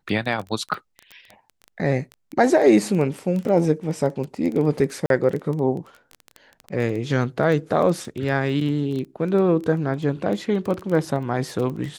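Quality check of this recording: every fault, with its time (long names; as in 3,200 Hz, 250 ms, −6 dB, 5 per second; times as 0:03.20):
surface crackle 11 per second −26 dBFS
0:05.06–0:05.10: drop-out 42 ms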